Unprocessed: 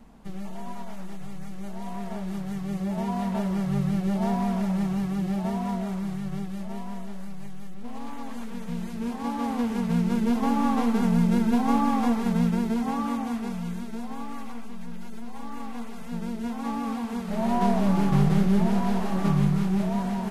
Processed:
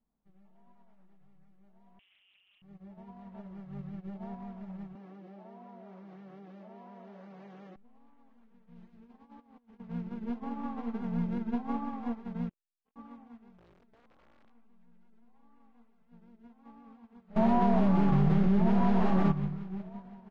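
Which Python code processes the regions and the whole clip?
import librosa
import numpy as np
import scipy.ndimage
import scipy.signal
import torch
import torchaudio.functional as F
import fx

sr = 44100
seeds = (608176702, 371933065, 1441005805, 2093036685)

y = fx.chain(x, sr, fx.freq_invert(carrier_hz=3000),
    fx.doppler_dist(depth_ms=0.22), at=(1.99, 2.62))
y = fx.chain(y, sr, fx.ellip_bandpass(low_hz=230.0, high_hz=6200.0, order=3, stop_db=40),
    fx.peak_eq(hz=510.0, db=6.5, octaves=0.78),
    fx.env_flatten(amount_pct=100), at=(4.95, 7.76))
y = fx.chain(y, sr, fx.peak_eq(hz=5100.0, db=3.0, octaves=2.0),
    fx.over_compress(threshold_db=-30.0, ratio=-0.5), at=(8.76, 9.8))
y = fx.chain(y, sr, fx.ladder_lowpass(hz=3100.0, resonance_pct=75),
    fx.comb(ms=2.0, depth=0.4),
    fx.transformer_sat(knee_hz=500.0), at=(12.49, 12.96))
y = fx.chain(y, sr, fx.self_delay(depth_ms=0.088),
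    fx.overflow_wrap(gain_db=26.5), at=(13.58, 14.5))
y = fx.chain(y, sr, fx.high_shelf(hz=5200.0, db=4.0),
    fx.env_flatten(amount_pct=100), at=(17.36, 19.32))
y = scipy.signal.sosfilt(scipy.signal.butter(2, 3800.0, 'lowpass', fs=sr, output='sos'), y)
y = fx.high_shelf(y, sr, hz=3000.0, db=-9.5)
y = fx.upward_expand(y, sr, threshold_db=-35.0, expansion=2.5)
y = y * librosa.db_to_amplitude(-4.0)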